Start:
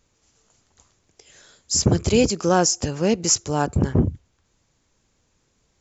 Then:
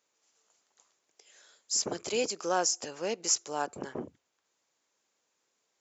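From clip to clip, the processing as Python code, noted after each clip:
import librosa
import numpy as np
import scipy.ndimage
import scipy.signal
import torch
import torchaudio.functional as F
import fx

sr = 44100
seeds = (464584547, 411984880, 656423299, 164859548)

y = scipy.signal.sosfilt(scipy.signal.butter(2, 470.0, 'highpass', fs=sr, output='sos'), x)
y = F.gain(torch.from_numpy(y), -8.0).numpy()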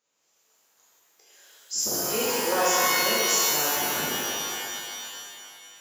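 y = fx.rev_shimmer(x, sr, seeds[0], rt60_s=2.5, semitones=12, shimmer_db=-2, drr_db=-8.5)
y = F.gain(torch.from_numpy(y), -4.0).numpy()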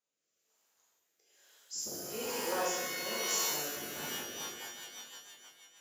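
y = fx.rotary_switch(x, sr, hz=1.1, then_hz=6.3, switch_at_s=3.87)
y = F.gain(torch.from_numpy(y), -9.0).numpy()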